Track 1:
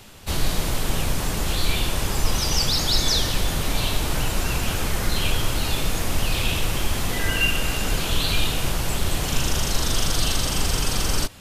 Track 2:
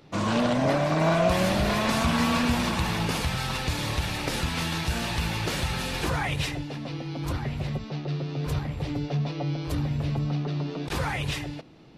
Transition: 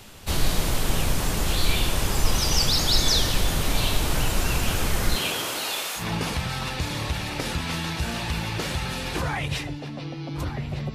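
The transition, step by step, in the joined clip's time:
track 1
0:05.15–0:06.07: high-pass filter 170 Hz → 990 Hz
0:06.01: continue with track 2 from 0:02.89, crossfade 0.12 s

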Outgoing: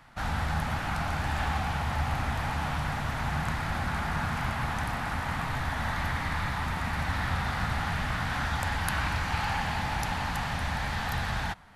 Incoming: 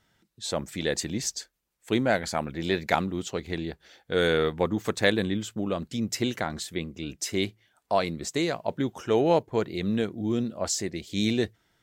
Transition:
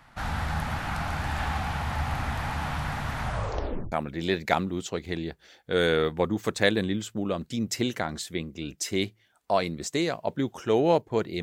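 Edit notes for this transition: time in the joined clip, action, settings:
outgoing
0:03.21: tape stop 0.71 s
0:03.92: continue with incoming from 0:02.33

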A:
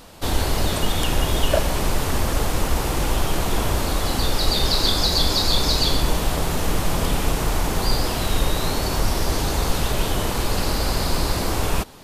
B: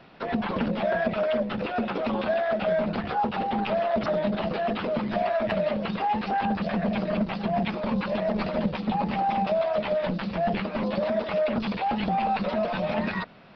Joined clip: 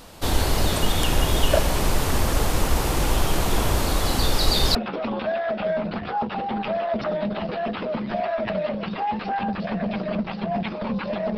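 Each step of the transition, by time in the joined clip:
A
0:04.75: continue with B from 0:01.77

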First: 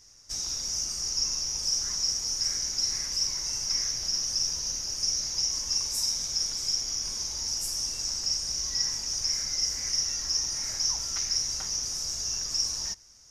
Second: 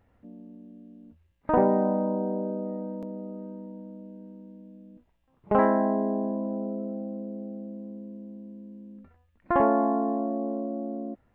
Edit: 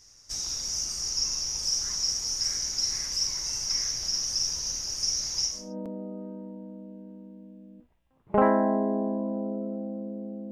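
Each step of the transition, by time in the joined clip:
first
0:05.61: continue with second from 0:02.78, crossfade 0.32 s quadratic

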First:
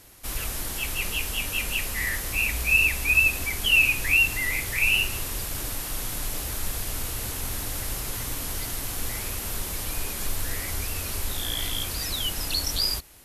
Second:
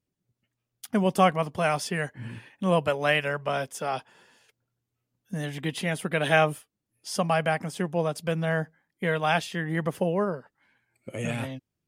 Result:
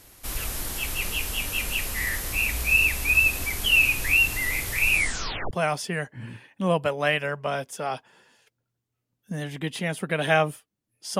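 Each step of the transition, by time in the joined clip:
first
0:04.90: tape stop 0.61 s
0:05.51: continue with second from 0:01.53

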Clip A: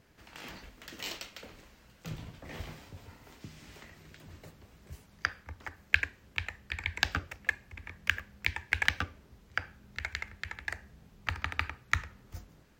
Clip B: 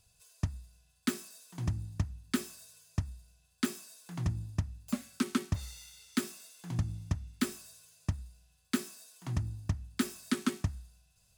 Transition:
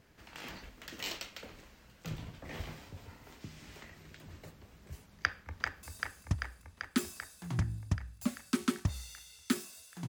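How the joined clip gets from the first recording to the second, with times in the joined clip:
clip A
0:05.12–0:05.83: delay throw 390 ms, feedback 75%, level −4 dB
0:05.83: continue with clip B from 0:02.50

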